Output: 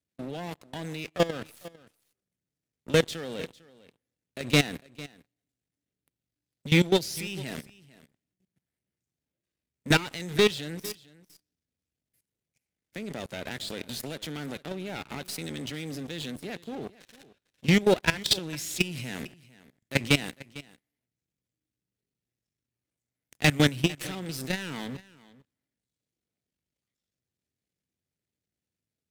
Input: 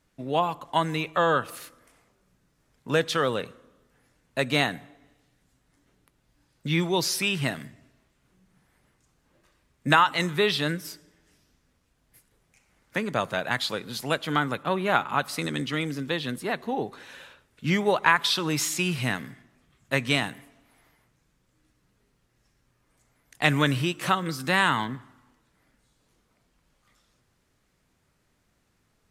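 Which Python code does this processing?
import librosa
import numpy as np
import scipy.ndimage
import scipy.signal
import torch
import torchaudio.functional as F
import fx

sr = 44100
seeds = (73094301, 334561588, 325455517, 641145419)

p1 = np.where(x < 0.0, 10.0 ** (-12.0 / 20.0) * x, x)
p2 = scipy.signal.sosfilt(scipy.signal.butter(4, 63.0, 'highpass', fs=sr, output='sos'), p1)
p3 = fx.peak_eq(p2, sr, hz=1100.0, db=-14.0, octaves=1.1)
p4 = fx.leveller(p3, sr, passes=3)
p5 = fx.level_steps(p4, sr, step_db=18)
y = p5 + fx.echo_single(p5, sr, ms=451, db=-20.0, dry=0)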